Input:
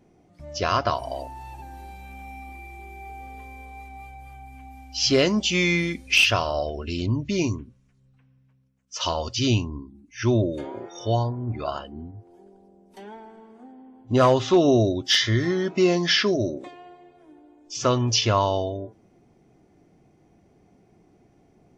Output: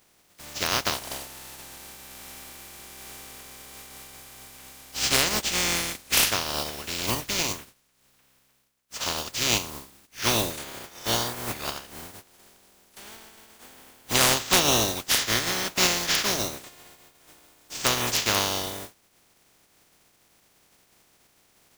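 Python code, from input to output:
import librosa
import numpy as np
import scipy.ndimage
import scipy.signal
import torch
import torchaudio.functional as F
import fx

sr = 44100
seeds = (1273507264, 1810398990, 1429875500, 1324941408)

y = fx.spec_flatten(x, sr, power=0.2)
y = fx.transient(y, sr, attack_db=2, sustain_db=-2)
y = y * 10.0 ** (-3.5 / 20.0)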